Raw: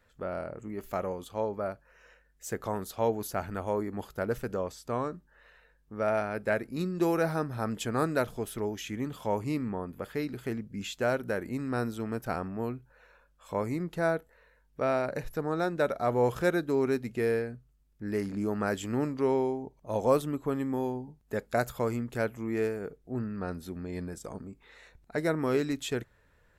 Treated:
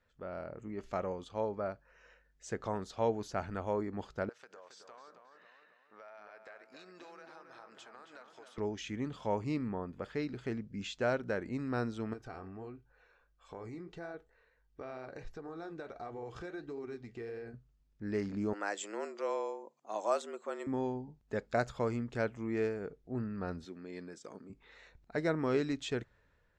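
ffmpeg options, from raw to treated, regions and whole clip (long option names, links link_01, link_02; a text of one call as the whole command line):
ffmpeg -i in.wav -filter_complex "[0:a]asettb=1/sr,asplit=3[link_01][link_02][link_03];[link_01]atrim=end=4.294[link_04];[link_02]atrim=start=4.29:end=8.58,asetpts=PTS-STARTPTS,afade=type=in:duration=0.004:curve=qsin,afade=type=out:start_time=4.286:duration=0.004:curve=qsin,highpass=770,acompressor=threshold=-47dB:ratio=6:attack=3.2:release=140:knee=1:detection=peak,asplit=2[link_05][link_06];[link_06]adelay=271,lowpass=frequency=3300:poles=1,volume=-6dB,asplit=2[link_07][link_08];[link_08]adelay=271,lowpass=frequency=3300:poles=1,volume=0.54,asplit=2[link_09][link_10];[link_10]adelay=271,lowpass=frequency=3300:poles=1,volume=0.54,asplit=2[link_11][link_12];[link_12]adelay=271,lowpass=frequency=3300:poles=1,volume=0.54,asplit=2[link_13][link_14];[link_14]adelay=271,lowpass=frequency=3300:poles=1,volume=0.54,asplit=2[link_15][link_16];[link_16]adelay=271,lowpass=frequency=3300:poles=1,volume=0.54,asplit=2[link_17][link_18];[link_18]adelay=271,lowpass=frequency=3300:poles=1,volume=0.54[link_19];[link_05][link_07][link_09][link_11][link_13][link_15][link_17][link_19]amix=inputs=8:normalize=0,atrim=end_sample=189189[link_20];[link_03]atrim=start=8.576[link_21];[link_04][link_20]acrossfade=duration=0.004:curve1=hsin:curve2=qsin[link_22];[link_22][link_21]acrossfade=duration=0.004:curve1=qsin:curve2=hsin,asettb=1/sr,asplit=3[link_23][link_24][link_25];[link_23]atrim=end=12.134[link_26];[link_24]atrim=start=12.13:end=17.54,asetpts=PTS-STARTPTS,afade=type=in:duration=0.004:curve=qsin,afade=type=out:start_time=5.406:duration=0.004:curve=qsin,flanger=delay=3:depth=8.1:regen=-60:speed=1.5:shape=triangular,acompressor=threshold=-37dB:ratio=6:attack=3.2:release=140:knee=1:detection=peak,aecho=1:1:2.6:0.41,atrim=end_sample=238581[link_27];[link_25]atrim=start=17.536[link_28];[link_26][link_27]acrossfade=duration=0.004:curve1=hsin:curve2=qsin[link_29];[link_29][link_28]acrossfade=duration=0.004:curve1=qsin:curve2=hsin,asettb=1/sr,asplit=3[link_30][link_31][link_32];[link_30]atrim=end=18.534[link_33];[link_31]atrim=start=18.53:end=20.67,asetpts=PTS-STARTPTS,afade=type=in:duration=0.004:curve=qsin,afade=type=out:start_time=2.136:duration=0.004:curve=qsin,highpass=frequency=640:poles=1,afreqshift=100,equalizer=frequency=7400:width_type=o:width=0.36:gain=11.5[link_34];[link_32]atrim=start=20.666[link_35];[link_33][link_34]acrossfade=duration=0.004:curve1=hsin:curve2=qsin[link_36];[link_36][link_35]acrossfade=duration=0.004:curve1=qsin:curve2=hsin,asettb=1/sr,asplit=3[link_37][link_38][link_39];[link_37]atrim=end=23.654[link_40];[link_38]atrim=start=23.65:end=24.5,asetpts=PTS-STARTPTS,afade=type=in:duration=0.004:curve=qsin,afade=type=out:start_time=0.846:duration=0.004:curve=qsin,highpass=280,equalizer=frequency=750:width_type=o:width=1.1:gain=-6.5[link_41];[link_39]atrim=start=24.496[link_42];[link_40][link_41]acrossfade=duration=0.004:curve1=hsin:curve2=qsin[link_43];[link_43][link_42]acrossfade=duration=0.004:curve1=qsin:curve2=hsin,lowpass=frequency=6600:width=0.5412,lowpass=frequency=6600:width=1.3066,dynaudnorm=framelen=130:gausssize=7:maxgain=5dB,volume=-8.5dB" out.wav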